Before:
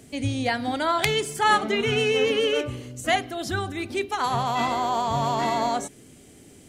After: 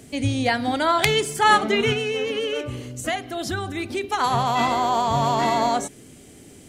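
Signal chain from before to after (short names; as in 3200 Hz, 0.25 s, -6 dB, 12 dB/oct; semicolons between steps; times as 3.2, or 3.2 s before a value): 1.92–4.04 compressor 4:1, threshold -27 dBFS, peak gain reduction 8.5 dB; gain +3.5 dB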